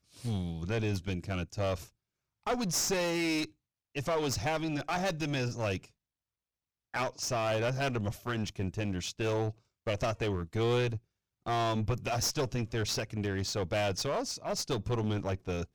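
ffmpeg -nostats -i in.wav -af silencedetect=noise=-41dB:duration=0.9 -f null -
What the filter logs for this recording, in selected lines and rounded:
silence_start: 5.85
silence_end: 6.94 | silence_duration: 1.09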